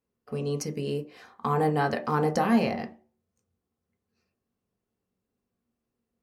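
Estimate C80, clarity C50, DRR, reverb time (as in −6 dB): 19.0 dB, 14.0 dB, 2.5 dB, non-exponential decay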